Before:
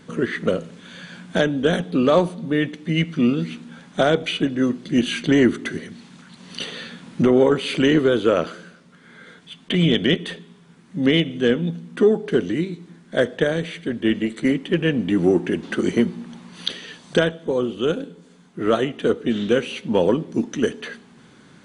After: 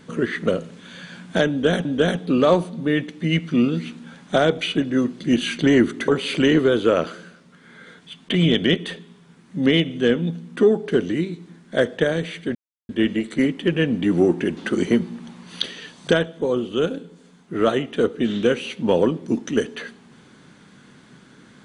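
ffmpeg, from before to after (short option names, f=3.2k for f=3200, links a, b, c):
-filter_complex "[0:a]asplit=4[a][b][c][d];[a]atrim=end=1.852[e];[b]atrim=start=1.498:end=5.732[f];[c]atrim=start=7.478:end=13.95,asetpts=PTS-STARTPTS,afade=t=out:st=6.468:d=0.004:c=hsin,apad=pad_dur=0.34[g];[d]atrim=start=13.95,asetpts=PTS-STARTPTS,afade=t=in:d=0.004:c=hsin[h];[e][f]acrossfade=d=0.004:c1=hsin:c2=hsin[i];[g][h]concat=n=2:v=0:a=1[j];[i][j]acrossfade=d=0.004:c1=hsin:c2=hsin"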